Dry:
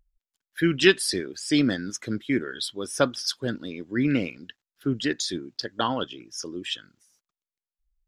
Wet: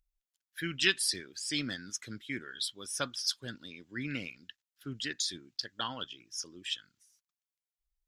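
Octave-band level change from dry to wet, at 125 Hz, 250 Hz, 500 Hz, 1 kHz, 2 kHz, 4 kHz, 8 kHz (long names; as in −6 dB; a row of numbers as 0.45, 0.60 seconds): −12.5, −16.0, −17.5, −11.5, −7.0, −4.0, −3.0 decibels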